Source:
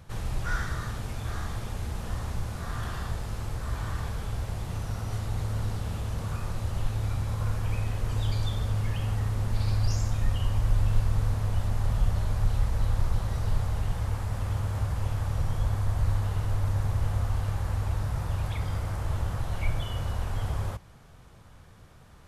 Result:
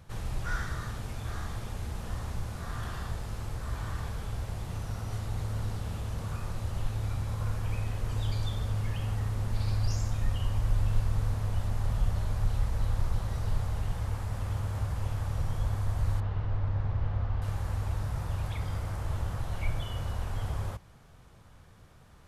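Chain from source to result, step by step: 16.20–17.42 s: distance through air 250 m; trim -3 dB

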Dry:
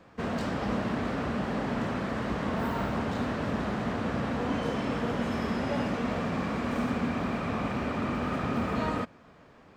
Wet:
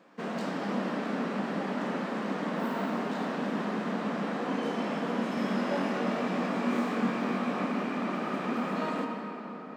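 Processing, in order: brick-wall FIR high-pass 160 Hz; 5.35–7.65 s: doubling 21 ms -3 dB; reverberation RT60 4.8 s, pre-delay 13 ms, DRR 2 dB; trim -3 dB

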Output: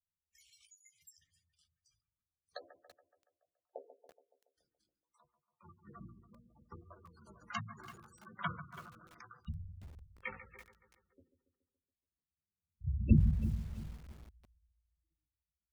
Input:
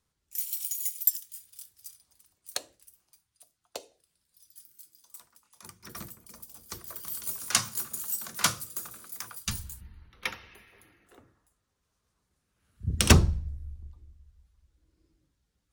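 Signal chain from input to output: flange 0.72 Hz, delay 9.8 ms, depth 9.5 ms, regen +6%; gate -57 dBFS, range -17 dB; tape spacing loss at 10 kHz 21 dB; bucket-brigade echo 141 ms, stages 2048, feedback 56%, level -12 dB; reverberation RT60 0.30 s, pre-delay 3 ms, DRR 20.5 dB; spectral gate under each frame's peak -10 dB strong; treble shelf 7 kHz -11.5 dB; hum notches 60/120/180/240/300/360/420/480 Hz; bit-crushed delay 333 ms, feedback 35%, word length 8-bit, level -12 dB

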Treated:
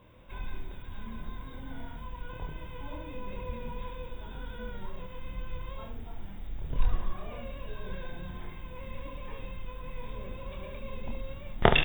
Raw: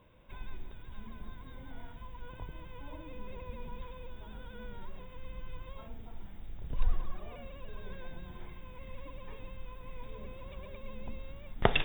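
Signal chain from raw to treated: early reflections 26 ms -3.5 dB, 71 ms -7.5 dB; trim +3.5 dB

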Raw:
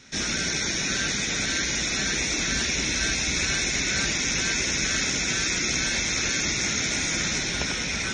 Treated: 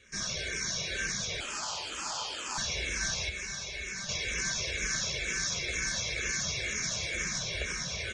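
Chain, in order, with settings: comb 1.8 ms, depth 77%; 1.40–2.58 s: ring modulator 940 Hz; 3.29–4.09 s: feedback comb 200 Hz, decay 0.15 s, harmonics all, mix 70%; echo that smears into a reverb 623 ms, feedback 51%, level -15.5 dB; barber-pole phaser -2.1 Hz; trim -6.5 dB

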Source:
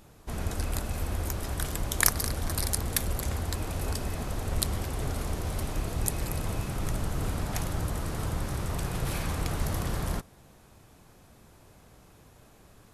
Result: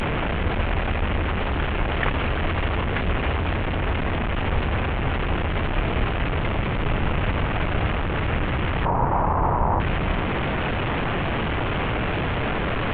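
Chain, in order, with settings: one-bit delta coder 16 kbps, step -24 dBFS; 8.85–9.80 s: resonant low-pass 940 Hz, resonance Q 4.3; trim +6.5 dB; Vorbis 64 kbps 32 kHz

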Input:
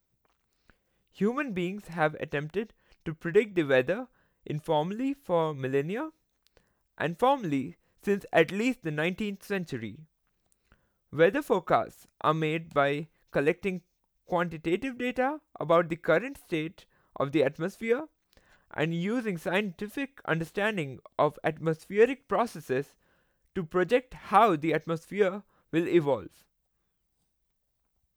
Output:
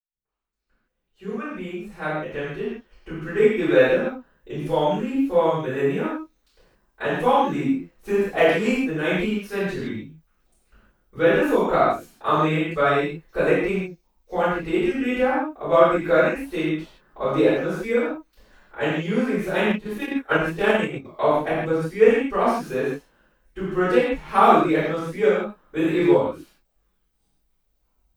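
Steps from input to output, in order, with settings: fade-in on the opening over 3.85 s; reverberation, pre-delay 3 ms, DRR -19.5 dB; 19.70–21.05 s: transient shaper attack +7 dB, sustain -8 dB; trim -12.5 dB

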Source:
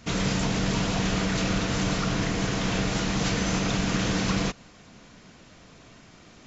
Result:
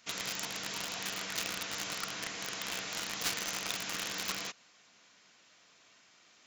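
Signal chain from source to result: low-pass 1.9 kHz 6 dB/octave; differentiator; in parallel at +2 dB: word length cut 6-bit, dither none; on the sum: trim +6 dB

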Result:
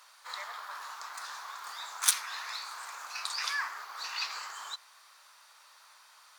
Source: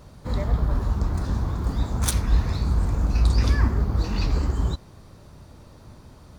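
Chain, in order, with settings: high-pass 1.1 kHz 24 dB/octave; trim +2 dB; MP3 320 kbps 44.1 kHz

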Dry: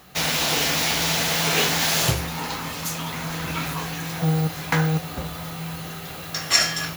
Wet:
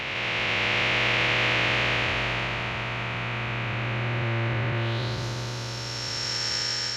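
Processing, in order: spectral blur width 1010 ms; low-pass sweep 2.5 kHz -> 5.6 kHz, 4.74–5.25 s; formant-preserving pitch shift -5.5 st

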